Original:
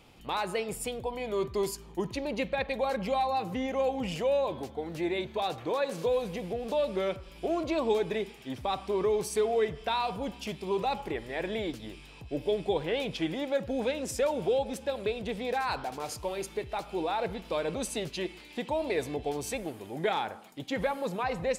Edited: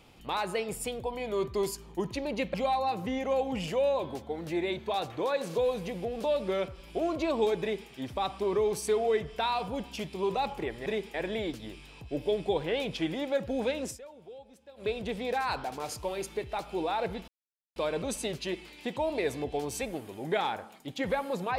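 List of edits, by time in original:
2.54–3.02 s: delete
8.09–8.37 s: copy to 11.34 s
14.06–15.09 s: dip -20 dB, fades 0.13 s
17.48 s: insert silence 0.48 s

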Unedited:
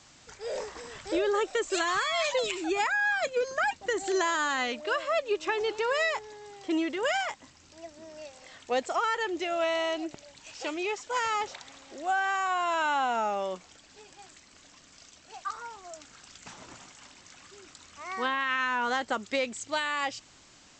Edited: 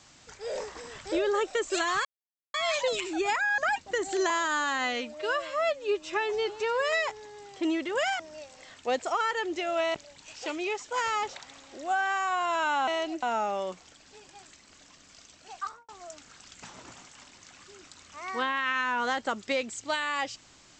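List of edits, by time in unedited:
2.05 s: insert silence 0.49 s
3.09–3.53 s: delete
4.25–6.00 s: stretch 1.5×
7.27–8.03 s: delete
9.78–10.13 s: move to 13.06 s
15.47–15.72 s: studio fade out

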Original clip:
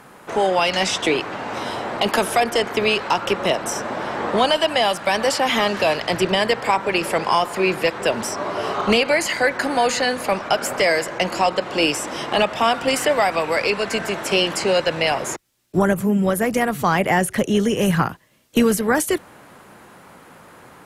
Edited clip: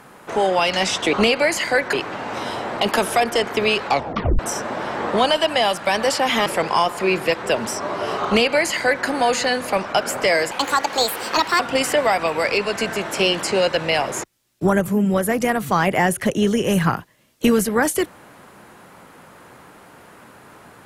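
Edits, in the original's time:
3.05 s: tape stop 0.54 s
5.66–7.02 s: delete
8.82–9.62 s: copy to 1.13 s
11.07–12.72 s: speed 152%

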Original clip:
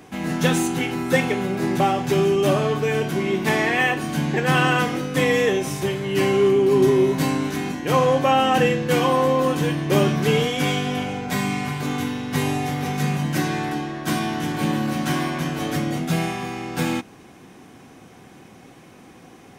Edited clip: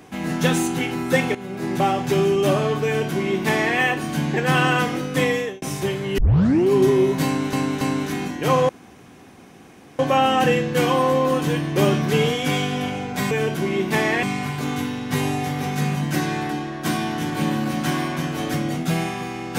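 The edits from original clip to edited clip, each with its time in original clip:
1.35–1.88 s: fade in, from -12.5 dB
2.85–3.77 s: copy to 11.45 s
5.23–5.62 s: fade out
6.18 s: tape start 0.48 s
7.25–7.53 s: loop, 3 plays
8.13 s: insert room tone 1.30 s

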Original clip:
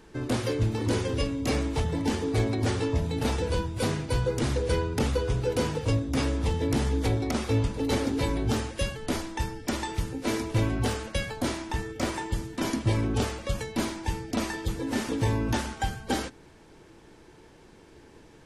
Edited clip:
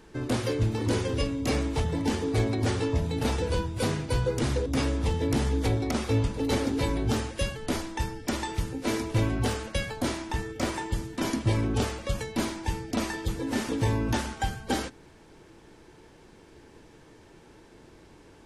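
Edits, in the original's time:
4.66–6.06 s: delete

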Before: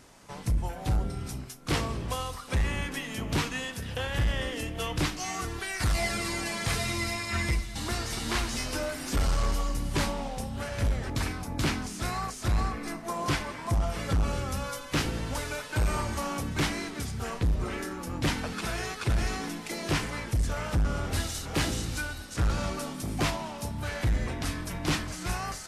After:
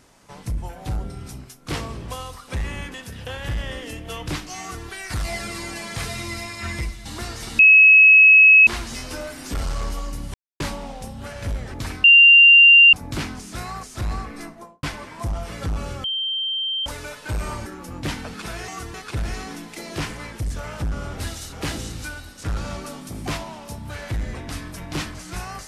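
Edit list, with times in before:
2.94–3.64 s: delete
5.30–5.56 s: copy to 18.87 s
8.29 s: add tone 2.57 kHz -7 dBFS 1.08 s
9.96 s: insert silence 0.26 s
11.40 s: add tone 2.78 kHz -6.5 dBFS 0.89 s
12.89–13.30 s: studio fade out
14.51–15.33 s: bleep 3.14 kHz -22 dBFS
16.13–17.85 s: delete

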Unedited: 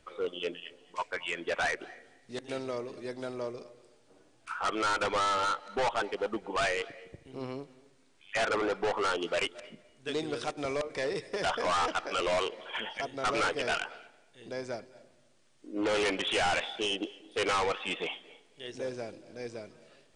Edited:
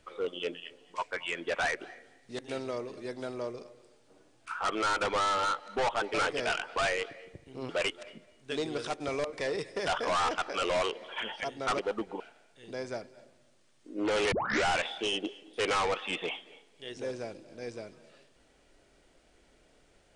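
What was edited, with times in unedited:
6.14–6.55 s: swap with 13.36–13.98 s
7.48–9.26 s: delete
16.10 s: tape start 0.34 s

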